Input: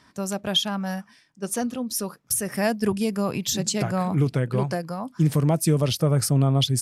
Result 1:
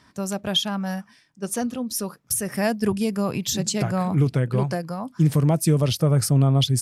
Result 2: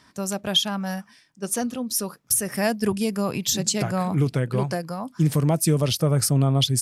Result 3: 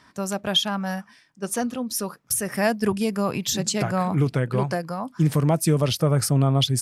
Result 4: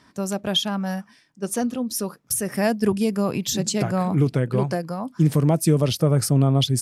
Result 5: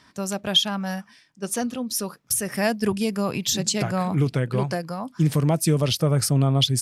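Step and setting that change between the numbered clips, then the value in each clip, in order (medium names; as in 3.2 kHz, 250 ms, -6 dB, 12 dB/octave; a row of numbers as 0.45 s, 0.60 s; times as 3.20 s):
peaking EQ, frequency: 81 Hz, 16 kHz, 1.3 kHz, 310 Hz, 3.4 kHz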